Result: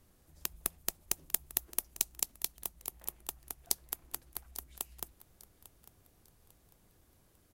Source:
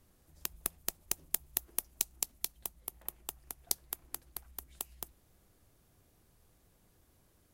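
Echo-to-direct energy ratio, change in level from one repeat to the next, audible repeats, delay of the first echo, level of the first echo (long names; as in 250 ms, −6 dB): −17.0 dB, −9.5 dB, 2, 848 ms, −17.5 dB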